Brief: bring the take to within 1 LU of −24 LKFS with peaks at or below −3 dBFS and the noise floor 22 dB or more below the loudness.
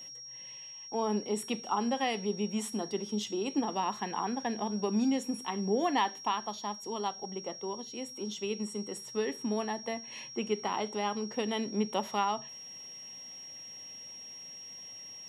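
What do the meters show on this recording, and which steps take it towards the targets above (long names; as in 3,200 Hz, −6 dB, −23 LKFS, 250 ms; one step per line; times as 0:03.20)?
interfering tone 5,600 Hz; level of the tone −44 dBFS; integrated loudness −34.5 LKFS; sample peak −17.0 dBFS; target loudness −24.0 LKFS
→ notch filter 5,600 Hz, Q 30
level +10.5 dB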